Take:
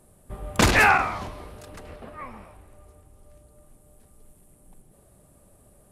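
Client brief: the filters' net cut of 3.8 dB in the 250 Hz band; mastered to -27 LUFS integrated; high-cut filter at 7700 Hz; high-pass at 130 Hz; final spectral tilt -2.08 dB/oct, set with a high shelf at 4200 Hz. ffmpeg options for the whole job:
-af "highpass=130,lowpass=7.7k,equalizer=f=250:t=o:g=-4.5,highshelf=f=4.2k:g=7.5,volume=-7.5dB"

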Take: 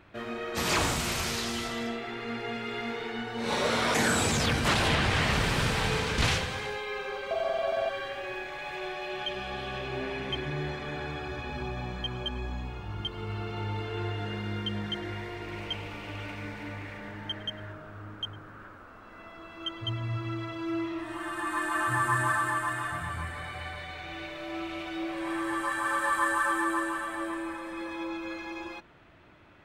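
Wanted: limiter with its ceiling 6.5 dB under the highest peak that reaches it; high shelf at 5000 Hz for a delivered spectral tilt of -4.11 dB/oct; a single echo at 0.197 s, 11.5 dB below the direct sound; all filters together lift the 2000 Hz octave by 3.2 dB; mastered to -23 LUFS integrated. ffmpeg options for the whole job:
-af "equalizer=f=2k:t=o:g=4.5,highshelf=f=5k:g=-3.5,alimiter=limit=-18dB:level=0:latency=1,aecho=1:1:197:0.266,volume=7.5dB"

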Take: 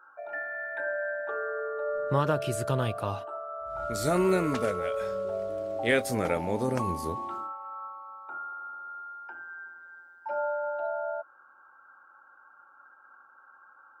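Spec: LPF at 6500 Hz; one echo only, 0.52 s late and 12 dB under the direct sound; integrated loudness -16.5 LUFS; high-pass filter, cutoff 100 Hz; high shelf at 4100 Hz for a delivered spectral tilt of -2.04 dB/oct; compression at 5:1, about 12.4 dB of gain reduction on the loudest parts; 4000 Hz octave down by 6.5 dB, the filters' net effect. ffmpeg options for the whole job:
-af "highpass=100,lowpass=6.5k,equalizer=f=4k:t=o:g=-3.5,highshelf=f=4.1k:g=-8.5,acompressor=threshold=-35dB:ratio=5,aecho=1:1:520:0.251,volume=22dB"

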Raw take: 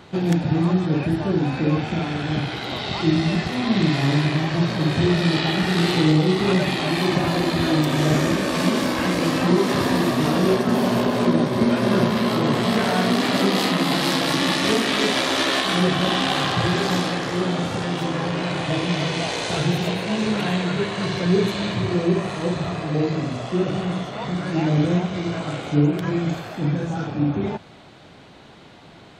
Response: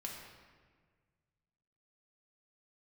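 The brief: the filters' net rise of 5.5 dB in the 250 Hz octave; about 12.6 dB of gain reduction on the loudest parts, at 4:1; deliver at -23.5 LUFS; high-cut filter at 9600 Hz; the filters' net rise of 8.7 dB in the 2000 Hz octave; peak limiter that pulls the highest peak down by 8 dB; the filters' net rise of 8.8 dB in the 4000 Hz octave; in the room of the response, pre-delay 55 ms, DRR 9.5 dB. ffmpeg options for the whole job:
-filter_complex "[0:a]lowpass=9.6k,equalizer=f=250:t=o:g=7.5,equalizer=f=2k:t=o:g=8.5,equalizer=f=4k:t=o:g=8,acompressor=threshold=-24dB:ratio=4,alimiter=limit=-18.5dB:level=0:latency=1,asplit=2[a][b];[1:a]atrim=start_sample=2205,adelay=55[c];[b][c]afir=irnorm=-1:irlink=0,volume=-8dB[d];[a][d]amix=inputs=2:normalize=0,volume=3.5dB"

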